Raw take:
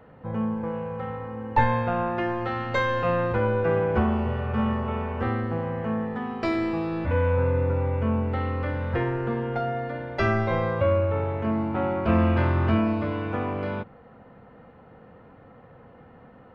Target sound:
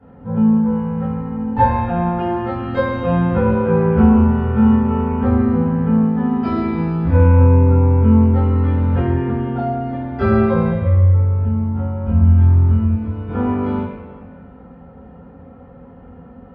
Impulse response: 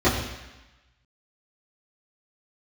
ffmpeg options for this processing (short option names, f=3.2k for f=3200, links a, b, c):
-filter_complex "[0:a]asettb=1/sr,asplit=3[a][b][c];[a]atrim=end=10.704[d];[b]atrim=start=10.7:end=13.28,asetpts=PTS-STARTPTS,afade=t=in:d=0.004:c=qsin,afade=t=out:st=2.576:d=0.004:c=qsin,acrossover=split=130[e][f];[f]acompressor=threshold=-41dB:ratio=3[g];[e][g]amix=inputs=2:normalize=0[h];[c]atrim=start=13.276[i];[d][h]acrossfade=d=0.004:c1=hsin:c2=qsin[j];[j][i]acrossfade=d=0.004:c1=qsin:c2=hsin[k];[1:a]atrim=start_sample=2205,asetrate=31311,aresample=44100[l];[k][l]afir=irnorm=-1:irlink=0,volume=-17.5dB"